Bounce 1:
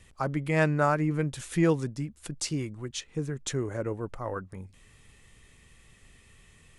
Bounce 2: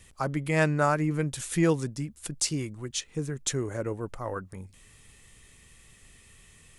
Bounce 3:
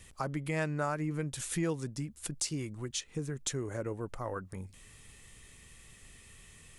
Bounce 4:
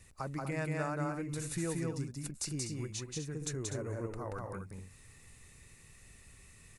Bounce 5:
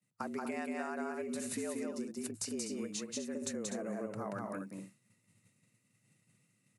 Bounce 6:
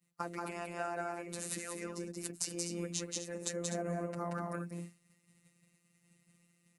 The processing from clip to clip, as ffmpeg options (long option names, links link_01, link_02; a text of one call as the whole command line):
ffmpeg -i in.wav -af "highshelf=frequency=5300:gain=9" out.wav
ffmpeg -i in.wav -af "acompressor=threshold=-36dB:ratio=2" out.wav
ffmpeg -i in.wav -af "equalizer=frequency=97:width_type=o:width=1.1:gain=3.5,bandreject=frequency=3200:width=5.1,aecho=1:1:180.8|247.8:0.794|0.355,volume=-5dB" out.wav
ffmpeg -i in.wav -af "acompressor=threshold=-37dB:ratio=6,afreqshift=100,agate=range=-33dB:threshold=-44dB:ratio=3:detection=peak,volume=2dB" out.wav
ffmpeg -i in.wav -af "afftfilt=real='hypot(re,im)*cos(PI*b)':imag='0':win_size=1024:overlap=0.75,volume=5.5dB" out.wav